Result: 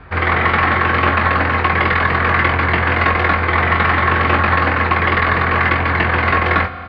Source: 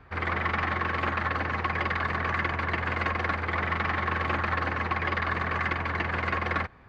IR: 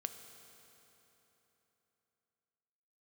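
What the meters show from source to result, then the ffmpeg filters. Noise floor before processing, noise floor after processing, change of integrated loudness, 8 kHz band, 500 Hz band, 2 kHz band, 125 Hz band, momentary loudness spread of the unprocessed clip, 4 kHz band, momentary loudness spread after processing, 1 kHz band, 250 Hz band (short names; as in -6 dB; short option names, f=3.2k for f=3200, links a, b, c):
-40 dBFS, -23 dBFS, +13.5 dB, n/a, +14.0 dB, +13.5 dB, +13.5 dB, 1 LU, +13.0 dB, 1 LU, +13.5 dB, +13.0 dB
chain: -filter_complex "[0:a]lowpass=f=4.4k:w=0.5412,lowpass=f=4.4k:w=1.3066,asplit=2[a][b];[b]adelay=22,volume=-6dB[c];[a][c]amix=inputs=2:normalize=0,asplit=2[d][e];[1:a]atrim=start_sample=2205[f];[e][f]afir=irnorm=-1:irlink=0,volume=4dB[g];[d][g]amix=inputs=2:normalize=0,volume=5.5dB"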